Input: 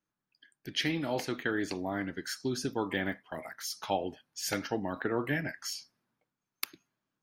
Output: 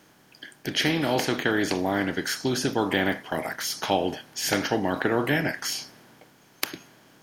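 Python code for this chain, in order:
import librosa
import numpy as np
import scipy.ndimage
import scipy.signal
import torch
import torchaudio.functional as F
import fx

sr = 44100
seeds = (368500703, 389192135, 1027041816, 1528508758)

y = fx.bin_compress(x, sr, power=0.6)
y = y * 10.0 ** (5.0 / 20.0)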